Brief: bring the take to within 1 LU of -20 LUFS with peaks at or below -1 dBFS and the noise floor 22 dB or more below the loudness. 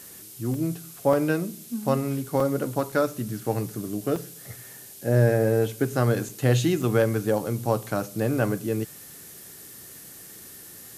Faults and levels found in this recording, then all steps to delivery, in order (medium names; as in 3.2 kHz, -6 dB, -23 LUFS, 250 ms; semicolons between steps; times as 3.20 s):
dropouts 7; longest dropout 3.3 ms; noise floor -45 dBFS; noise floor target -48 dBFS; loudness -25.5 LUFS; peak level -8.0 dBFS; loudness target -20.0 LUFS
-> interpolate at 0.54/1.13/2.40/2.92/4.16/6.29/6.82 s, 3.3 ms; noise reduction 6 dB, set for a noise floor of -45 dBFS; trim +5.5 dB